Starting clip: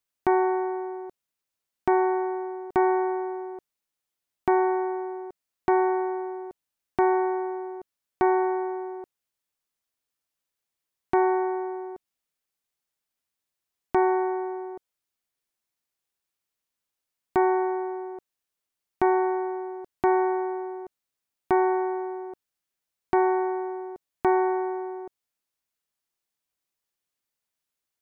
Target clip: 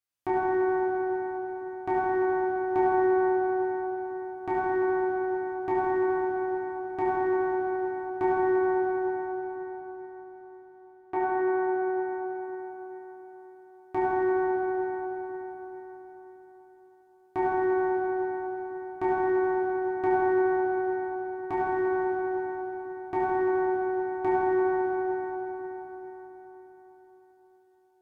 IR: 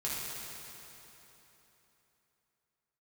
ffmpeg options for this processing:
-filter_complex "[0:a]asettb=1/sr,asplit=3[link_01][link_02][link_03];[link_01]atrim=end=8.904[link_04];[link_02]atrim=start=8.9:end=11.41,asetpts=PTS-STARTPTS,afade=type=in:duration=0.004:curve=qsin,afade=type=out:start_time=2.506:duration=0.004:curve=qsin,bass=frequency=250:gain=-8,treble=frequency=4000:gain=-11[link_05];[link_03]atrim=start=11.406[link_06];[link_04][link_05]acrossfade=duration=0.004:curve1=hsin:curve2=qsin[link_07];[link_07][link_06]acrossfade=duration=0.004:curve1=qsin:curve2=hsin[link_08];[1:a]atrim=start_sample=2205,asetrate=32634,aresample=44100[link_09];[link_08][link_09]afir=irnorm=-1:irlink=0,volume=-8dB"

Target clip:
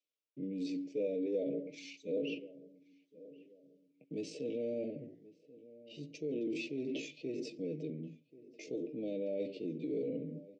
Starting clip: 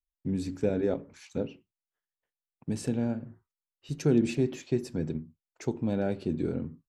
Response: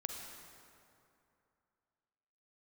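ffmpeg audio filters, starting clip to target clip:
-filter_complex "[0:a]aecho=1:1:6.6:0.55,areverse,acompressor=threshold=-38dB:ratio=5,areverse,alimiter=level_in=13dB:limit=-24dB:level=0:latency=1:release=12,volume=-13dB,atempo=0.65,asuperstop=centerf=1200:order=12:qfactor=0.75,highpass=frequency=210:width=0.5412,highpass=frequency=210:width=1.3066,equalizer=frequency=210:width_type=q:width=4:gain=-5,equalizer=frequency=490:width_type=q:width=4:gain=5,equalizer=frequency=1000:width_type=q:width=4:gain=6,equalizer=frequency=1600:width_type=q:width=4:gain=10,equalizer=frequency=4200:width_type=q:width=4:gain=-4,lowpass=frequency=5200:width=0.5412,lowpass=frequency=5200:width=1.3066,asplit=2[link_01][link_02];[link_02]adelay=1084,lowpass=frequency=1000:poles=1,volume=-18dB,asplit=2[link_03][link_04];[link_04]adelay=1084,lowpass=frequency=1000:poles=1,volume=0.39,asplit=2[link_05][link_06];[link_06]adelay=1084,lowpass=frequency=1000:poles=1,volume=0.39[link_07];[link_01][link_03][link_05][link_07]amix=inputs=4:normalize=0,volume=8dB"

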